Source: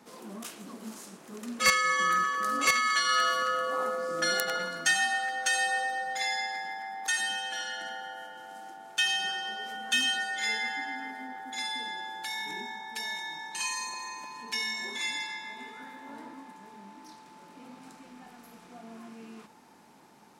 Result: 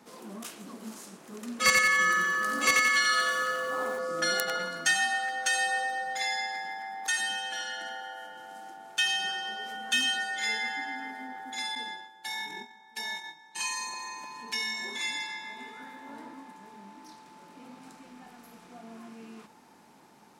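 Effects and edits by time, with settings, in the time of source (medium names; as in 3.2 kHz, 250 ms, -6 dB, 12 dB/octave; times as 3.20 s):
1.53–3.99 s: bit-crushed delay 88 ms, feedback 55%, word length 9-bit, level -3.5 dB
7.58–8.21 s: high-pass 110 Hz -> 350 Hz
11.75–13.74 s: gate -38 dBFS, range -14 dB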